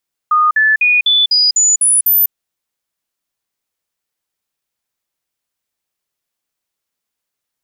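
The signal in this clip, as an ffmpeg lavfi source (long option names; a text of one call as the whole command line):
ffmpeg -f lavfi -i "aevalsrc='0.398*clip(min(mod(t,0.25),0.2-mod(t,0.25))/0.005,0,1)*sin(2*PI*1230*pow(2,floor(t/0.25)/2)*mod(t,0.25))':duration=2:sample_rate=44100" out.wav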